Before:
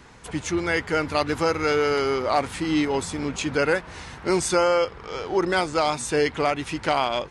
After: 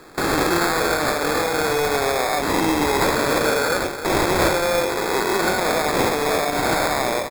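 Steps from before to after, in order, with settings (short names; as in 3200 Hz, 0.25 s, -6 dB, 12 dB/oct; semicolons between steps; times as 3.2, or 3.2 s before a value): spectral swells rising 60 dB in 2.36 s; notch 1300 Hz; gate with hold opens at -15 dBFS; low shelf 180 Hz -11.5 dB; limiter -16.5 dBFS, peak gain reduction 11.5 dB; high shelf 5800 Hz +11 dB; on a send: tapped delay 90/320 ms -9.5/-10 dB; on the sum: sample-and-hold 15×; gain +4 dB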